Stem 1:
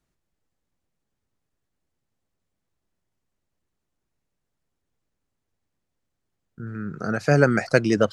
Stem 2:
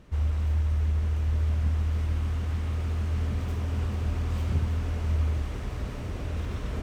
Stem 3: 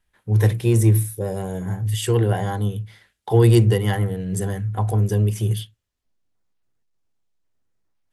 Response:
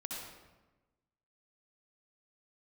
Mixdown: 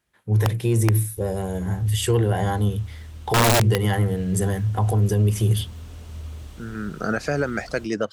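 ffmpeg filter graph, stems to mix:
-filter_complex "[0:a]highpass=f=190:p=1,alimiter=limit=0.211:level=0:latency=1:release=490,volume=0.944[s0];[1:a]aexciter=amount=1.3:drive=9.5:freq=3000,adelay=1050,volume=0.2[s1];[2:a]highpass=66,volume=1[s2];[s0][s1][s2]amix=inputs=3:normalize=0,dynaudnorm=f=730:g=5:m=1.88,aeval=exprs='(mod(2*val(0)+1,2)-1)/2':c=same,alimiter=limit=0.266:level=0:latency=1:release=80"

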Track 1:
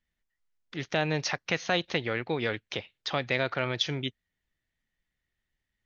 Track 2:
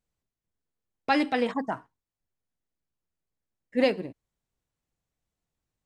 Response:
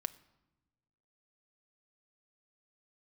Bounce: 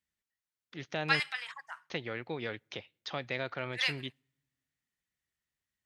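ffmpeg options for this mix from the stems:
-filter_complex "[0:a]highpass=69,volume=0.376,asplit=3[s0][s1][s2];[s0]atrim=end=1.2,asetpts=PTS-STARTPTS,afade=t=out:st=1.196:d=0.004:c=hsin[s3];[s1]atrim=start=1.2:end=1.9,asetpts=PTS-STARTPTS,volume=0[s4];[s2]atrim=start=1.9,asetpts=PTS-STARTPTS,afade=t=in:d=0.004:c=hsin[s5];[s3][s4][s5]concat=n=3:v=0:a=1,asplit=3[s6][s7][s8];[s7]volume=0.112[s9];[1:a]highpass=f=1300:w=0.5412,highpass=f=1300:w=1.3066,volume=1.06,asplit=2[s10][s11];[s11]volume=0.15[s12];[s8]apad=whole_len=258066[s13];[s10][s13]sidechaingate=range=0.501:threshold=0.002:ratio=16:detection=peak[s14];[2:a]atrim=start_sample=2205[s15];[s9][s12]amix=inputs=2:normalize=0[s16];[s16][s15]afir=irnorm=-1:irlink=0[s17];[s6][s14][s17]amix=inputs=3:normalize=0"

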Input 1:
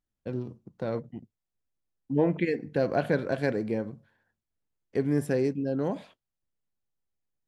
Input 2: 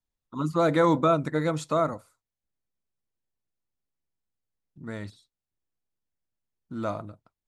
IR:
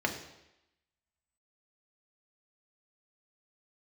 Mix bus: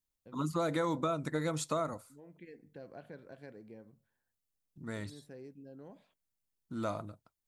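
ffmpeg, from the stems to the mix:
-filter_complex "[0:a]acompressor=threshold=0.00631:ratio=1.5,volume=0.168[s0];[1:a]highshelf=f=5100:g=10.5,volume=0.596,asplit=2[s1][s2];[s2]apad=whole_len=329599[s3];[s0][s3]sidechaincompress=threshold=0.0112:ratio=8:attack=10:release=609[s4];[s4][s1]amix=inputs=2:normalize=0,acompressor=threshold=0.0355:ratio=6"

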